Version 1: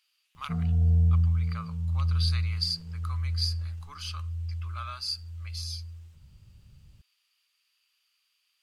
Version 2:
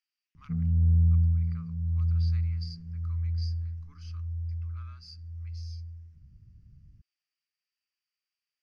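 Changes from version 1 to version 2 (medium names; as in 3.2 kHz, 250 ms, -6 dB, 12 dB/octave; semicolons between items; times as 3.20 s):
speech -3.0 dB; master: add FFT filter 290 Hz 0 dB, 650 Hz -22 dB, 1.9 kHz -9 dB, 3.7 kHz -23 dB, 5.5 kHz -9 dB, 8.3 kHz -28 dB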